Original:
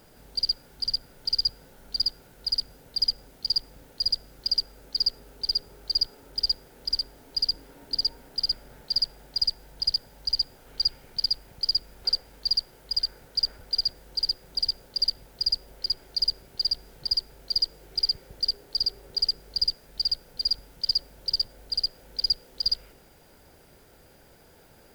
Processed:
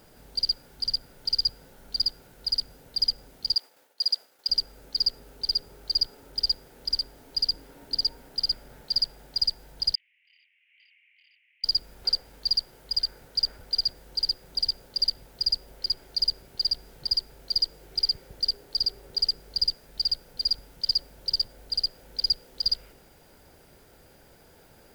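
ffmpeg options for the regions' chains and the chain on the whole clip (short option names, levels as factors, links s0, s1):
-filter_complex "[0:a]asettb=1/sr,asplit=3[s0][s1][s2];[s0]atrim=end=3.544[s3];[s1]atrim=start=3.54:end=4.49,asetpts=PTS-STARTPTS,afade=t=in:d=0.004:c=qsin,afade=t=out:st=0.946:d=0.004:c=qsin,agate=range=0.0224:threshold=0.00501:ratio=3:release=100:detection=peak,highpass=570[s4];[s2]atrim=start=4.486[s5];[s3][s4]acrossfade=d=0.004:c1=hsin:c2=qsin[s6];[s6][s5]acrossfade=d=0.004:c1=qsin:c2=hsin,asettb=1/sr,asplit=3[s7][s8][s9];[s7]atrim=end=9.954[s10];[s8]atrim=start=9.95:end=11.64,asetpts=PTS-STARTPTS,afade=t=in:d=0.004:c=qsin,afade=t=out:st=1.686:d=0.004:c=qsin,asuperpass=centerf=2400:order=8:qfactor=2.6,asplit=2[s11][s12];[s12]adelay=25,volume=0.708[s13];[s11][s13]amix=inputs=2:normalize=0,atrim=end_sample=74529[s14];[s9]atrim=start=11.636[s15];[s10][s14]acrossfade=d=0.004:c1=hsin:c2=qsin[s16];[s16][s15]acrossfade=d=0.004:c1=qsin:c2=hsin"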